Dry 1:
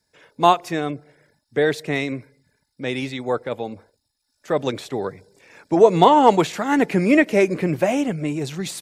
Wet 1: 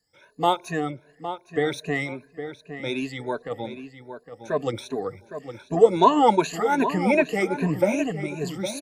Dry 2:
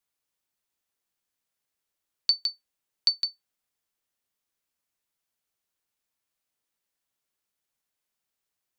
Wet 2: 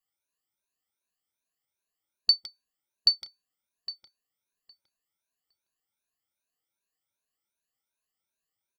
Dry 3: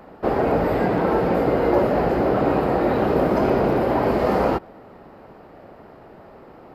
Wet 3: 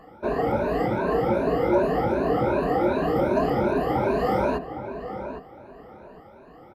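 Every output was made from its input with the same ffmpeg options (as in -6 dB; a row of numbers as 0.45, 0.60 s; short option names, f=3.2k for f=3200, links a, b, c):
-filter_complex "[0:a]afftfilt=real='re*pow(10,19/40*sin(2*PI*(1.5*log(max(b,1)*sr/1024/100)/log(2)-(2.6)*(pts-256)/sr)))':imag='im*pow(10,19/40*sin(2*PI*(1.5*log(max(b,1)*sr/1024/100)/log(2)-(2.6)*(pts-256)/sr)))':win_size=1024:overlap=0.75,asplit=2[a][b];[b]adelay=811,lowpass=f=2.6k:p=1,volume=-10dB,asplit=2[c][d];[d]adelay=811,lowpass=f=2.6k:p=1,volume=0.2,asplit=2[e][f];[f]adelay=811,lowpass=f=2.6k:p=1,volume=0.2[g];[c][e][g]amix=inputs=3:normalize=0[h];[a][h]amix=inputs=2:normalize=0,volume=-7.5dB"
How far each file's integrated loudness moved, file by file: -4.5, +1.5, -4.0 LU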